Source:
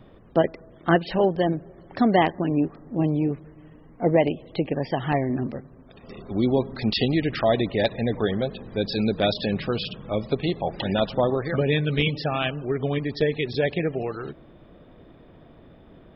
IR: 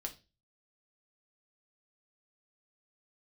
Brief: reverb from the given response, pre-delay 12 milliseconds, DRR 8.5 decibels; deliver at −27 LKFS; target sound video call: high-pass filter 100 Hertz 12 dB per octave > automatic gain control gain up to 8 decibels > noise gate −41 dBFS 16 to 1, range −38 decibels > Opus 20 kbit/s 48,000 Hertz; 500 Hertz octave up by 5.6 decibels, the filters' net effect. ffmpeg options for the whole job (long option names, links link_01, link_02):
-filter_complex "[0:a]equalizer=frequency=500:width_type=o:gain=7,asplit=2[link_01][link_02];[1:a]atrim=start_sample=2205,adelay=12[link_03];[link_02][link_03]afir=irnorm=-1:irlink=0,volume=-7dB[link_04];[link_01][link_04]amix=inputs=2:normalize=0,highpass=100,dynaudnorm=maxgain=8dB,agate=range=-38dB:threshold=-41dB:ratio=16,volume=-6dB" -ar 48000 -c:a libopus -b:a 20k